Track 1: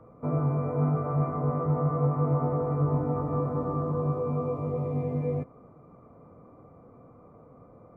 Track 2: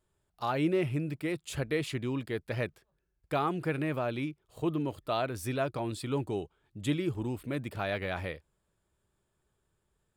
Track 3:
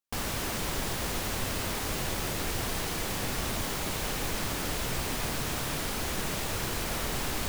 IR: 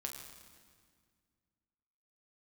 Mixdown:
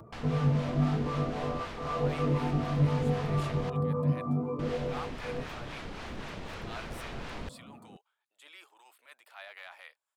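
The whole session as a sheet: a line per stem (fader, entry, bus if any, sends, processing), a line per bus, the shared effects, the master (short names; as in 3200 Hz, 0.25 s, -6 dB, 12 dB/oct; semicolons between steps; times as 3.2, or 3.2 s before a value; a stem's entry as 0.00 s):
+2.0 dB, 0.00 s, no send, bell 220 Hz +9 dB 0.25 oct; upward compressor, threshold -43 dBFS; tape flanging out of phase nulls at 0.29 Hz, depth 4 ms
-5.5 dB, 1.55 s, no send, HPF 770 Hz 24 dB/oct; transient shaper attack -10 dB, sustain +2 dB
-5.0 dB, 0.00 s, muted 3.7–4.59, no send, LPF 3300 Hz 12 dB/oct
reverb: off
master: harmonic tremolo 3.9 Hz, depth 50%, crossover 590 Hz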